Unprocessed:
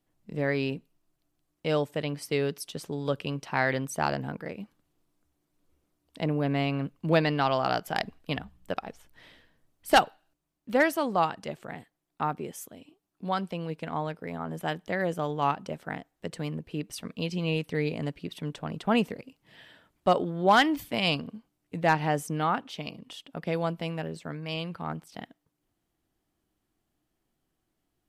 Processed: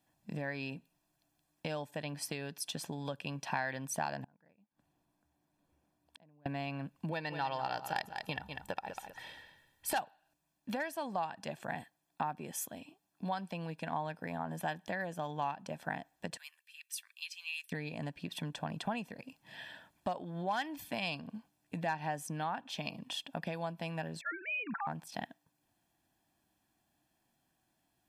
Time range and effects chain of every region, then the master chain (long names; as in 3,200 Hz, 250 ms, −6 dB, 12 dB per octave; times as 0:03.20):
0:04.24–0:06.46: high-shelf EQ 2,300 Hz −9 dB + downward compressor, threshold −30 dBFS + gate with flip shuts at −39 dBFS, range −30 dB
0:07.11–0:09.95: comb filter 2.2 ms, depth 50% + repeating echo 197 ms, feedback 22%, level −13 dB
0:16.37–0:17.72: Bessel high-pass filter 3,000 Hz, order 4 + parametric band 4,400 Hz −7 dB 2 octaves
0:24.21–0:24.87: three sine waves on the formant tracks + dynamic equaliser 1,600 Hz, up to +5 dB, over −47 dBFS, Q 1.1 + phaser with its sweep stopped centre 1,400 Hz, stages 4
whole clip: downward compressor 8 to 1, threshold −36 dBFS; high-pass filter 220 Hz 6 dB per octave; comb filter 1.2 ms, depth 59%; level +2.5 dB